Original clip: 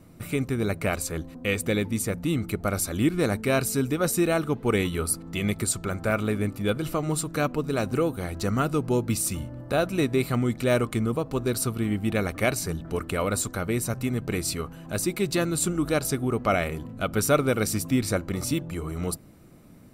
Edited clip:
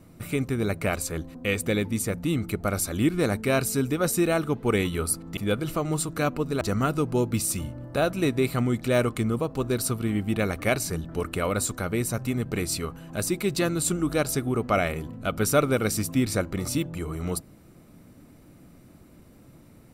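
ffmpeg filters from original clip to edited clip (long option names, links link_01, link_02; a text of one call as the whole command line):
ffmpeg -i in.wav -filter_complex "[0:a]asplit=3[link_01][link_02][link_03];[link_01]atrim=end=5.372[link_04];[link_02]atrim=start=6.548:end=7.792[link_05];[link_03]atrim=start=8.368[link_06];[link_04][link_05]acrossfade=duration=0.004:curve1=hsin:curve2=hsin[link_07];[link_07][link_06]acrossfade=duration=0.004:curve1=hsin:curve2=hsin" out.wav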